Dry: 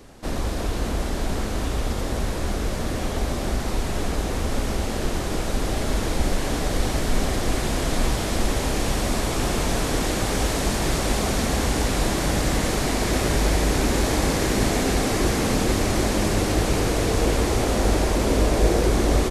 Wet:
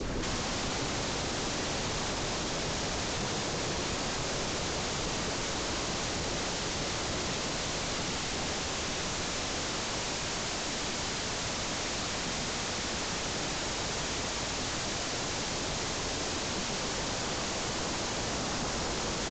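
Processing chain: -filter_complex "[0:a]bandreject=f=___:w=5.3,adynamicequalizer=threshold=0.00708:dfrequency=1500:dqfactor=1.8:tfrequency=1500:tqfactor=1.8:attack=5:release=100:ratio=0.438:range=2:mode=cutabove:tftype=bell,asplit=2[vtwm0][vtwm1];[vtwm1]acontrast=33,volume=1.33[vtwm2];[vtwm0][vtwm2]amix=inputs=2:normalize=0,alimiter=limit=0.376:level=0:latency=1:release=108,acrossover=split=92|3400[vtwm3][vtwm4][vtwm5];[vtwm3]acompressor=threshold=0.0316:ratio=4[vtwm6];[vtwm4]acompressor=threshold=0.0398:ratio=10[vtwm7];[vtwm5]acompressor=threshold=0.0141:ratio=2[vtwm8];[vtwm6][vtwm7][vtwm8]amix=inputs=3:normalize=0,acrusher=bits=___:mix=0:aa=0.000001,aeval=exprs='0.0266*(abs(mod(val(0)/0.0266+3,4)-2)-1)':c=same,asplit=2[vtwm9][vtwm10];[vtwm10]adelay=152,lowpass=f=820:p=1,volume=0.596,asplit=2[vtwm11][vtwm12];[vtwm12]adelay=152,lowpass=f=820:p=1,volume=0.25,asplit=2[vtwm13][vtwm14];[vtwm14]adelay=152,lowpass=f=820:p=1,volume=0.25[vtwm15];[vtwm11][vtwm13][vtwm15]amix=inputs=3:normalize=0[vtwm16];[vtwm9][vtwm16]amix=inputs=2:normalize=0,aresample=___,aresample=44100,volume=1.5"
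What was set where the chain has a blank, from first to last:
750, 10, 16000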